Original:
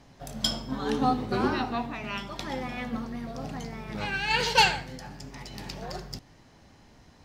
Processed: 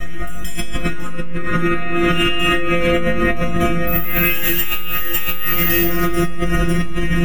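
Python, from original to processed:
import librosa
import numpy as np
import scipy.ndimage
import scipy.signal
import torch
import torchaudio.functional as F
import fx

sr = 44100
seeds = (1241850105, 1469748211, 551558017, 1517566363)

y = fx.lower_of_two(x, sr, delay_ms=3.2)
y = fx.low_shelf(y, sr, hz=130.0, db=7.5)
y = fx.fixed_phaser(y, sr, hz=2000.0, stages=4)
y = fx.stiff_resonator(y, sr, f0_hz=170.0, decay_s=0.78, stiffness=0.002)
y = y + 10.0 ** (-11.0 / 20.0) * np.pad(y, (int(550 * sr / 1000.0), 0))[:len(y)]
y = fx.resample_bad(y, sr, factor=3, down='none', up='zero_stuff', at=(3.87, 5.87))
y = fx.rider(y, sr, range_db=10, speed_s=0.5)
y = fx.room_shoebox(y, sr, seeds[0], volume_m3=3500.0, walls='mixed', distance_m=6.4)
y = fx.env_flatten(y, sr, amount_pct=100)
y = F.gain(torch.from_numpy(y), -2.0).numpy()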